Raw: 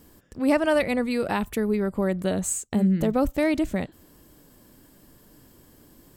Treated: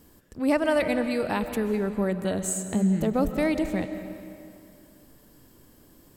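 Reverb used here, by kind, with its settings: digital reverb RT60 2.4 s, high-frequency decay 0.8×, pre-delay 95 ms, DRR 9 dB; gain -2 dB

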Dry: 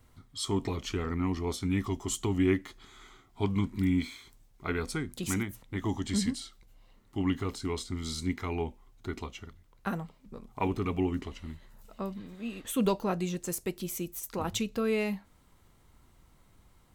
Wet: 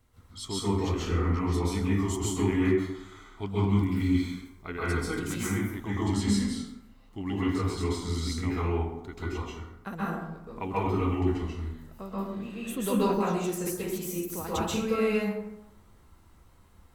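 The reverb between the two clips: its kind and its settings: plate-style reverb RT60 0.9 s, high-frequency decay 0.5×, pre-delay 0.12 s, DRR -8.5 dB; gain -5.5 dB

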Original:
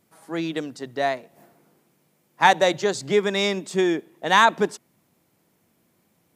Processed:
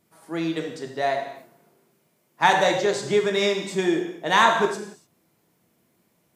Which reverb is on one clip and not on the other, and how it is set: non-linear reverb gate 0.32 s falling, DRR 2 dB; gain -2.5 dB

